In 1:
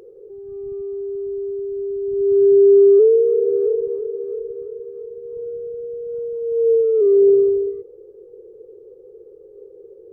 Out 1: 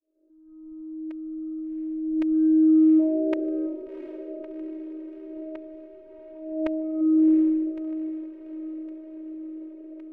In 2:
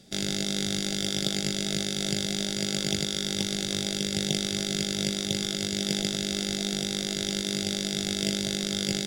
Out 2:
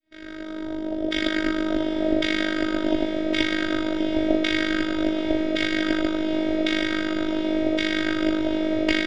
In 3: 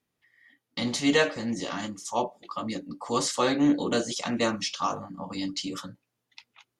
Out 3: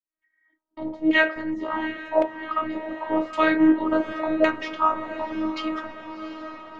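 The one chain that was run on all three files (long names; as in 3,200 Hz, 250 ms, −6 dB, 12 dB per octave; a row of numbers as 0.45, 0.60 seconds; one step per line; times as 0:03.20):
fade in at the beginning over 1.54 s
auto-filter low-pass saw down 0.9 Hz 580–2,300 Hz
phases set to zero 316 Hz
feedback delay with all-pass diffusion 726 ms, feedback 66%, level −12 dB
loudness normalisation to −24 LKFS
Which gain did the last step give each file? −3.5, +11.5, +5.0 decibels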